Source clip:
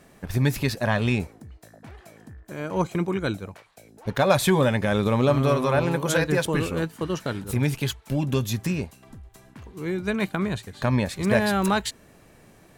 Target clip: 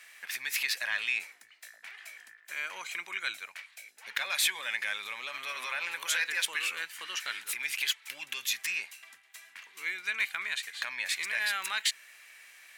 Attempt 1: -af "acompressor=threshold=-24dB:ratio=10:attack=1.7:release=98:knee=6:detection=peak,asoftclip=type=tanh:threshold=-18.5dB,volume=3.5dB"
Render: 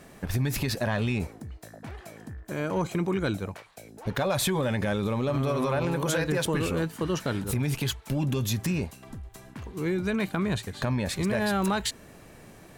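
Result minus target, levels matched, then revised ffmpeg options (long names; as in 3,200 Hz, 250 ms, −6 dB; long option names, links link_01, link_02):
2,000 Hz band −8.0 dB
-af "acompressor=threshold=-24dB:ratio=10:attack=1.7:release=98:knee=6:detection=peak,highpass=frequency=2100:width_type=q:width=2.4,asoftclip=type=tanh:threshold=-18.5dB,volume=3.5dB"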